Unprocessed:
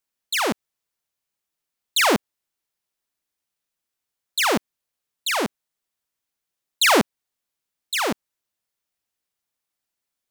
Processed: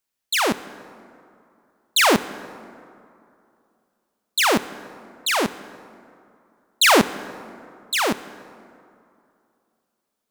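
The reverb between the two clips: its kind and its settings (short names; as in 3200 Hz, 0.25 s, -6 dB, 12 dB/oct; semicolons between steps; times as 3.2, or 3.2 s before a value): plate-style reverb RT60 2.6 s, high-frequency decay 0.5×, DRR 14.5 dB; gain +2 dB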